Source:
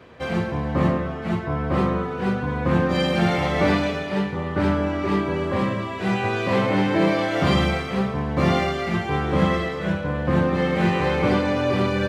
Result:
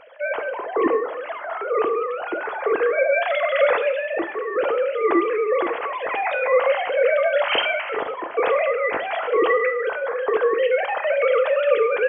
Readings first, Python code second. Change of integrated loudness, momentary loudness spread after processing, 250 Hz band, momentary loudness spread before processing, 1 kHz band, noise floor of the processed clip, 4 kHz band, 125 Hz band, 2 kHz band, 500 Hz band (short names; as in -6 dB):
+1.0 dB, 8 LU, -10.5 dB, 5 LU, +1.5 dB, -32 dBFS, -0.5 dB, under -35 dB, +3.5 dB, +5.5 dB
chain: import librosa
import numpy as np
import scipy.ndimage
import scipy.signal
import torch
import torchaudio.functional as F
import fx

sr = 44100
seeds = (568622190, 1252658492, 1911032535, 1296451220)

y = fx.sine_speech(x, sr)
y = fx.rev_double_slope(y, sr, seeds[0], early_s=0.47, late_s=2.1, knee_db=-17, drr_db=8.5)